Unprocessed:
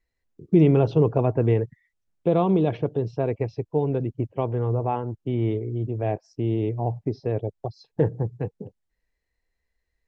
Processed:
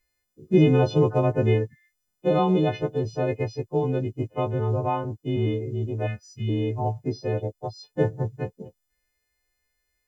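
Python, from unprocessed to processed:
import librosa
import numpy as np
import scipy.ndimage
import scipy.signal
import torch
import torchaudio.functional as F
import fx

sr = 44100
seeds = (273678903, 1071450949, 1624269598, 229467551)

y = fx.freq_snap(x, sr, grid_st=3)
y = fx.spec_box(y, sr, start_s=6.07, length_s=0.41, low_hz=220.0, high_hz=1200.0, gain_db=-19)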